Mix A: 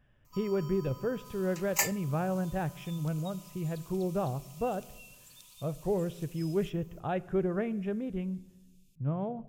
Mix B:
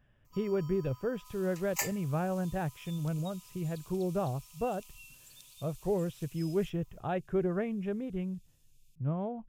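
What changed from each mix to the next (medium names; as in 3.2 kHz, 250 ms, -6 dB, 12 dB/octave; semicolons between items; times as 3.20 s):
first sound -5.0 dB; reverb: off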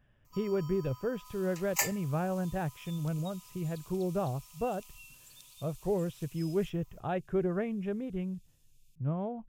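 first sound +3.5 dB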